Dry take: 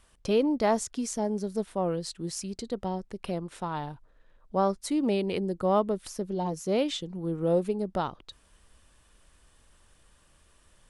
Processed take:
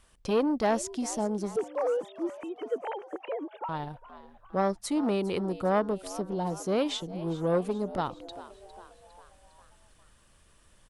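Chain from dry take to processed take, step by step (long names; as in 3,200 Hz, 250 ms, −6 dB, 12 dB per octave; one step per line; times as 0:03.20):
0:01.56–0:03.69: three sine waves on the formant tracks
echo with shifted repeats 405 ms, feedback 54%, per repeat +89 Hz, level −17 dB
saturating transformer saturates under 670 Hz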